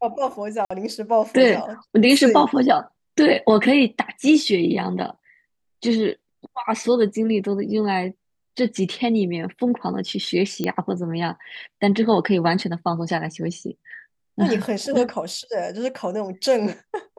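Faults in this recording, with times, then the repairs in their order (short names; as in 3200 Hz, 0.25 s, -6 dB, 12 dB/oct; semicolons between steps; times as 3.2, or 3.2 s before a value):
0.65–0.7 gap 55 ms
10.64 pop -11 dBFS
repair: de-click; interpolate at 0.65, 55 ms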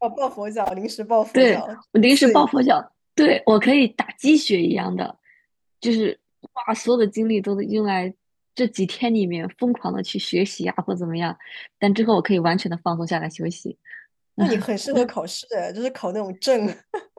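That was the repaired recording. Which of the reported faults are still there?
none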